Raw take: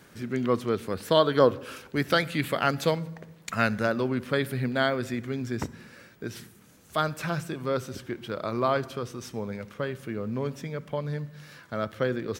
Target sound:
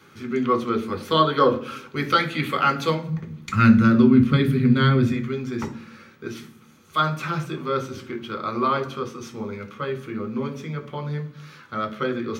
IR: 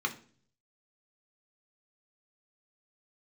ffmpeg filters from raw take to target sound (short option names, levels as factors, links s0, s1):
-filter_complex "[0:a]asplit=3[s0][s1][s2];[s0]afade=t=out:st=3.07:d=0.02[s3];[s1]asubboost=boost=9.5:cutoff=210,afade=t=in:st=3.07:d=0.02,afade=t=out:st=5.11:d=0.02[s4];[s2]afade=t=in:st=5.11:d=0.02[s5];[s3][s4][s5]amix=inputs=3:normalize=0[s6];[1:a]atrim=start_sample=2205[s7];[s6][s7]afir=irnorm=-1:irlink=0,volume=0.794"